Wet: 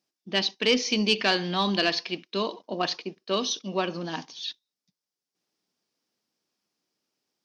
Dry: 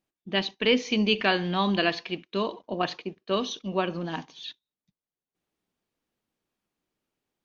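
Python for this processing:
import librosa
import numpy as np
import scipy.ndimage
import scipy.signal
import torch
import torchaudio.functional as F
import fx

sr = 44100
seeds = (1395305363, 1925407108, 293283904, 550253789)

y = scipy.signal.sosfilt(scipy.signal.butter(2, 160.0, 'highpass', fs=sr, output='sos'), x)
y = 10.0 ** (-12.0 / 20.0) * np.tanh(y / 10.0 ** (-12.0 / 20.0))
y = fx.peak_eq(y, sr, hz=5200.0, db=14.0, octaves=0.63)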